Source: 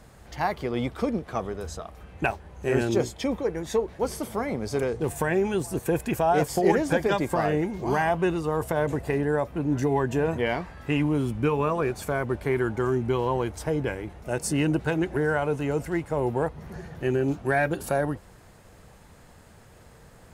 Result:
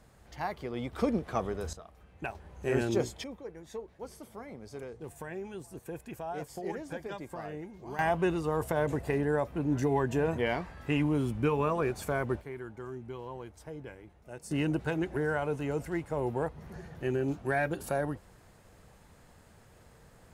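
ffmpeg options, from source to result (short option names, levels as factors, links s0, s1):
-af "asetnsamples=n=441:p=0,asendcmd='0.93 volume volume -2dB;1.73 volume volume -12dB;2.35 volume volume -5dB;3.24 volume volume -16dB;7.99 volume volume -4dB;12.41 volume volume -16.5dB;14.51 volume volume -6dB',volume=0.376"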